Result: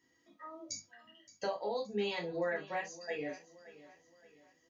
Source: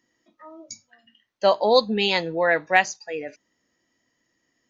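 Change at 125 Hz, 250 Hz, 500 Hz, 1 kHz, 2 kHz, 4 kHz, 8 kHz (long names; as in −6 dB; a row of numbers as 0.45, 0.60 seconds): −12.5 dB, −13.0 dB, −15.0 dB, −18.0 dB, −18.0 dB, −18.5 dB, can't be measured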